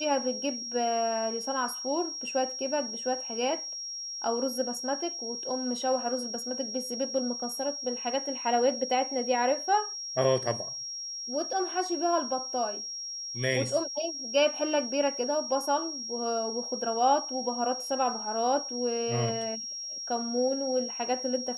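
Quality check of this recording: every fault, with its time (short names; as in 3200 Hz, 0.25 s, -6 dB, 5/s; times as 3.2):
tone 5600 Hz -35 dBFS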